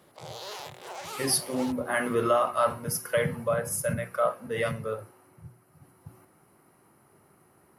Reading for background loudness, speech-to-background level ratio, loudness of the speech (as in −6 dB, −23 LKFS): −40.0 LKFS, 12.0 dB, −28.0 LKFS